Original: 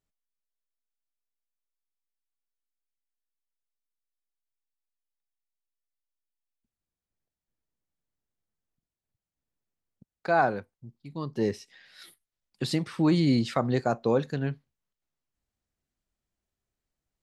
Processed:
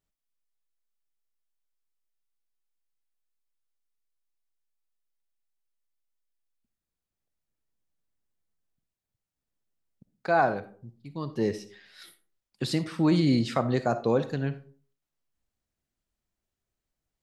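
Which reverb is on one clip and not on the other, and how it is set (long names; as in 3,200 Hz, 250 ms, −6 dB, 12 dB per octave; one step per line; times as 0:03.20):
comb and all-pass reverb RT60 0.45 s, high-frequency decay 0.45×, pre-delay 15 ms, DRR 12 dB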